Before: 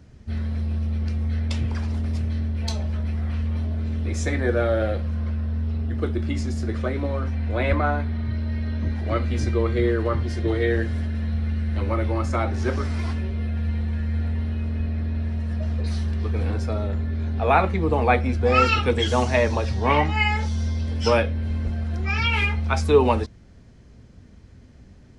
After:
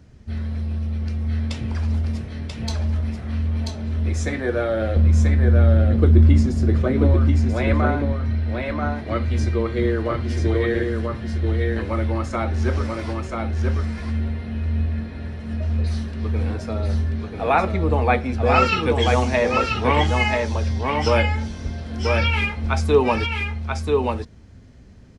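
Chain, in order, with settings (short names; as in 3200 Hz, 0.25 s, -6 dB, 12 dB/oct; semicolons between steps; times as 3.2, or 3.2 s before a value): 4.96–7.14 low shelf 420 Hz +11 dB; echo 0.986 s -3.5 dB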